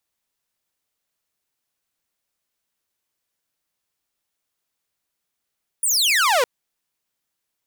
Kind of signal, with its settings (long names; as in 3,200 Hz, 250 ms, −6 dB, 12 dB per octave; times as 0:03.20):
single falling chirp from 10,000 Hz, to 460 Hz, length 0.61 s saw, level −12.5 dB